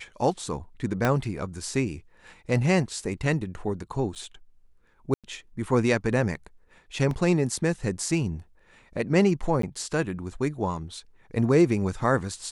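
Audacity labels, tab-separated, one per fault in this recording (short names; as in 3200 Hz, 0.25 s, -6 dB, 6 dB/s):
1.050000	1.050000	pop -10 dBFS
4.150000	4.160000	gap 7.8 ms
5.140000	5.240000	gap 97 ms
7.110000	7.110000	gap 2.1 ms
9.620000	9.630000	gap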